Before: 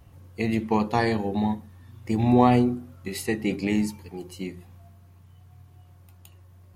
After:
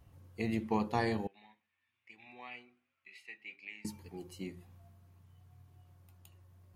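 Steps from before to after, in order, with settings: 1.27–3.85 band-pass 2400 Hz, Q 4.5; gain -9 dB

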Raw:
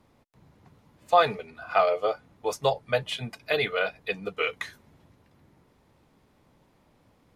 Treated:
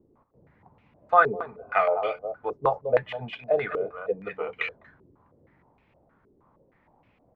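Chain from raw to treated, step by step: echo 0.204 s -11.5 dB; stepped low-pass 6.4 Hz 390–2500 Hz; gain -3.5 dB

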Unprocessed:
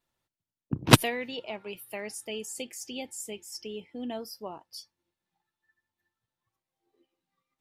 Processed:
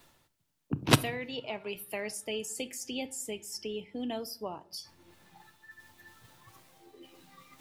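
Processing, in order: reverse; upward compressor, threshold -51 dBFS; reverse; shoebox room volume 640 m³, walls furnished, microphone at 0.35 m; three-band squash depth 40%

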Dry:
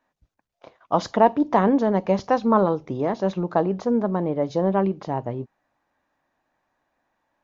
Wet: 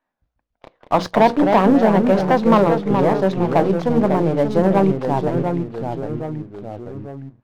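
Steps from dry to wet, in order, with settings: half-wave gain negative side -3 dB; LPF 4600 Hz; notches 60/120/180/240/300/360/420/480/540 Hz; vibrato 8.8 Hz 14 cents; sample leveller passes 2; echoes that change speed 0.113 s, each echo -2 st, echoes 3, each echo -6 dB

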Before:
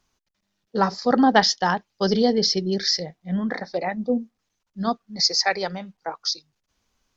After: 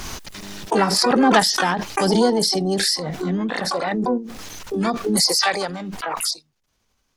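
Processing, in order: harmoniser +7 st -12 dB, +12 st -10 dB; backwards sustainer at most 21 dB/s

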